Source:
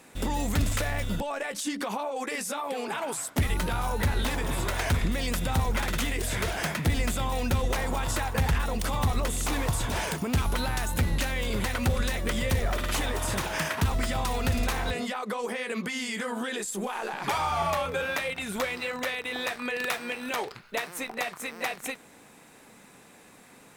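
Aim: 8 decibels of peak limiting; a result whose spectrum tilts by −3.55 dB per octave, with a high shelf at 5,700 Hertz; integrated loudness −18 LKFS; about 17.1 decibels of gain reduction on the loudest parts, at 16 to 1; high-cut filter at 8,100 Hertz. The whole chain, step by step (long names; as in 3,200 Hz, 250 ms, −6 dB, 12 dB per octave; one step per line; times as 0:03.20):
low-pass filter 8,100 Hz
high-shelf EQ 5,700 Hz +8.5 dB
downward compressor 16 to 1, threshold −38 dBFS
level +26 dB
brickwall limiter −8.5 dBFS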